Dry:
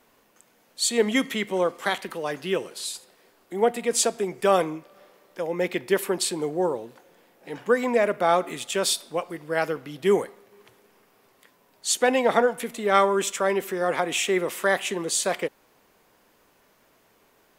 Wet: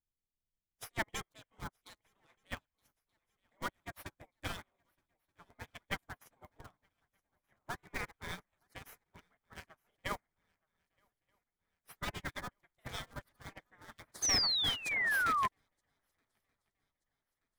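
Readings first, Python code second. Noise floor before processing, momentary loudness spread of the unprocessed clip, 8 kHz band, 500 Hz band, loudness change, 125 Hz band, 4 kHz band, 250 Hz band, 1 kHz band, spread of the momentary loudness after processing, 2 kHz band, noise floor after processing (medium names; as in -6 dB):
-62 dBFS, 11 LU, -14.0 dB, -29.5 dB, -11.0 dB, -10.5 dB, -6.5 dB, -22.5 dB, -14.5 dB, 24 LU, -9.0 dB, under -85 dBFS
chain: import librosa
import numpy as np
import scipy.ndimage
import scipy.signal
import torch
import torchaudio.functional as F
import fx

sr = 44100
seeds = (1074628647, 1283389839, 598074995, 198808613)

p1 = fx.wiener(x, sr, points=9)
p2 = fx.schmitt(p1, sr, flips_db=-18.0)
p3 = p1 + F.gain(torch.from_numpy(p2), -7.5).numpy()
p4 = fx.transient(p3, sr, attack_db=1, sustain_db=-12)
p5 = fx.spec_gate(p4, sr, threshold_db=-20, keep='weak')
p6 = p5 + fx.echo_swing(p5, sr, ms=1229, ratio=3, feedback_pct=46, wet_db=-16.0, dry=0)
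p7 = fx.dmg_noise_colour(p6, sr, seeds[0], colour='brown', level_db=-71.0)
p8 = fx.low_shelf(p7, sr, hz=490.0, db=5.5)
p9 = fx.spec_paint(p8, sr, seeds[1], shape='fall', start_s=14.22, length_s=1.26, low_hz=1000.0, high_hz=6400.0, level_db=-29.0)
p10 = fx.peak_eq(p9, sr, hz=2700.0, db=-7.0, octaves=0.26)
y = fx.upward_expand(p10, sr, threshold_db=-46.0, expansion=2.5)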